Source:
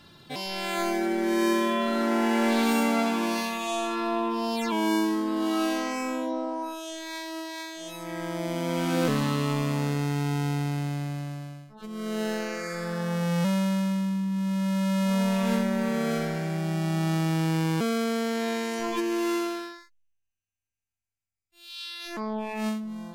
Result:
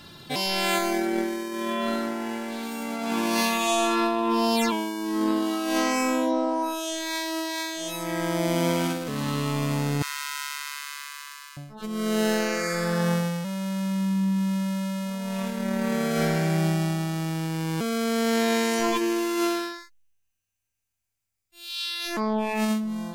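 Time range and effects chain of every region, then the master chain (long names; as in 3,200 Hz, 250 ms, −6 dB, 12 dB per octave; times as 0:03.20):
0:10.02–0:11.57: mu-law and A-law mismatch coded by mu + Chebyshev high-pass filter 980 Hz, order 8
whole clip: high-shelf EQ 5,400 Hz +5 dB; compressor whose output falls as the input rises −28 dBFS, ratio −0.5; level +3.5 dB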